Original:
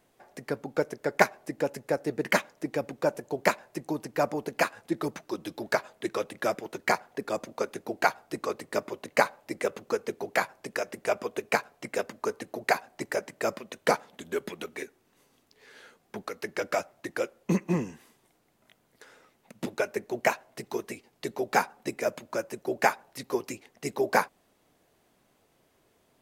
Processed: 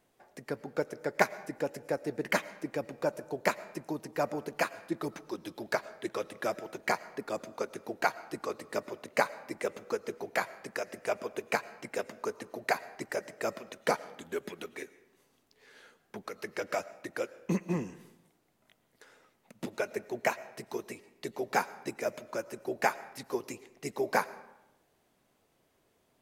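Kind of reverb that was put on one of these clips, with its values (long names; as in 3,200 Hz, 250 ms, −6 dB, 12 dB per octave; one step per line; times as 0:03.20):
comb and all-pass reverb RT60 0.94 s, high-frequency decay 0.65×, pre-delay 70 ms, DRR 17.5 dB
level −4.5 dB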